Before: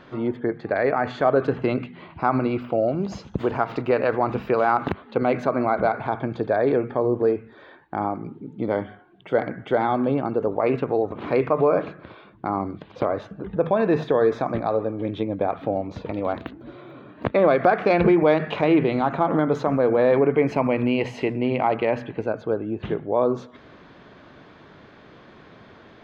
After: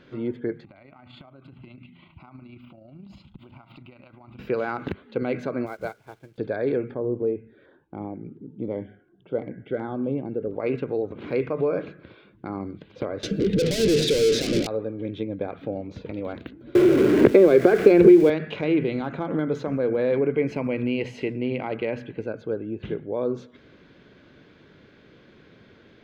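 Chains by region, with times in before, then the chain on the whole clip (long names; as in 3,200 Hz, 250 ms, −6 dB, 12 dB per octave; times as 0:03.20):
0:00.64–0:04.39: downward compressor 4 to 1, threshold −33 dBFS + phaser with its sweep stopped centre 1,700 Hz, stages 6 + amplitude modulation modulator 28 Hz, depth 25%
0:05.66–0:06.38: parametric band 240 Hz −9 dB 0.35 octaves + centre clipping without the shift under −38 dBFS + expander for the loud parts 2.5 to 1, over −31 dBFS
0:06.94–0:10.54: high-frequency loss of the air 390 metres + auto-filter notch saw down 1.4 Hz 870–2,700 Hz
0:13.23–0:14.67: mid-hump overdrive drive 36 dB, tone 1,800 Hz, clips at −7.5 dBFS + drawn EQ curve 440 Hz 0 dB, 940 Hz −22 dB, 4,800 Hz +10 dB
0:16.75–0:18.30: converter with a step at zero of −31.5 dBFS + parametric band 380 Hz +13.5 dB 0.55 octaves + multiband upward and downward compressor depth 100%
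whole clip: flat-topped bell 900 Hz −9 dB 1.2 octaves; notch filter 1,800 Hz, Q 14; level −3.5 dB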